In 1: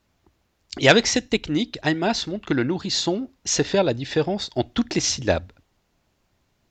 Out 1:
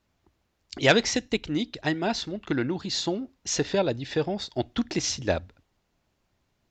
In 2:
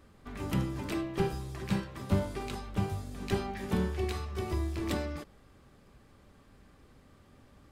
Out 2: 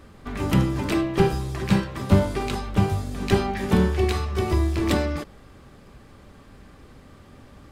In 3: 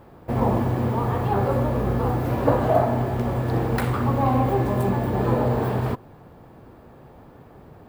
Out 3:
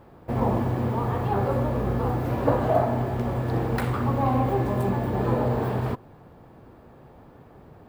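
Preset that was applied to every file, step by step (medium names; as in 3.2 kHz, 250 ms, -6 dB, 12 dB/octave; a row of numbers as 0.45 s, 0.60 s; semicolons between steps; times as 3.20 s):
treble shelf 8.3 kHz -3.5 dB; peak normalisation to -6 dBFS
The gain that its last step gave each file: -4.5 dB, +11.0 dB, -2.5 dB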